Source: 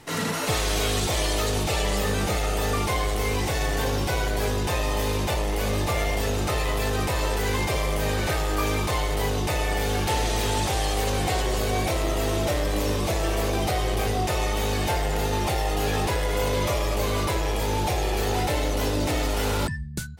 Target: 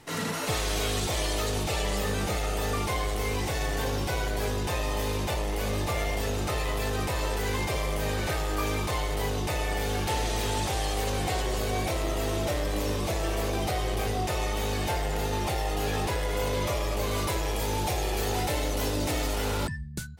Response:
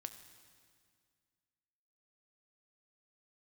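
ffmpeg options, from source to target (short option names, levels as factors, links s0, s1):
-filter_complex "[0:a]asettb=1/sr,asplit=3[s0][s1][s2];[s0]atrim=end=17.114[s3];[s1]atrim=start=17.11:end=19.36,asetpts=PTS-STARTPTS,afade=t=in:d=0.004:c=qsin,afade=t=out:st=2.246:d=0.004:c=qsin,highshelf=f=5400:g=5[s4];[s2]atrim=start=19.356[s5];[s3][s4]acrossfade=d=0.004:c1=hsin:c2=qsin[s6];[s6][s5]acrossfade=d=0.004:c1=qsin:c2=hsin,volume=0.631"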